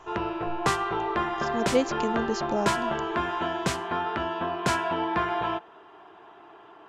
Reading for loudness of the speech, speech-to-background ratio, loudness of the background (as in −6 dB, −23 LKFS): −30.0 LKFS, −1.5 dB, −28.5 LKFS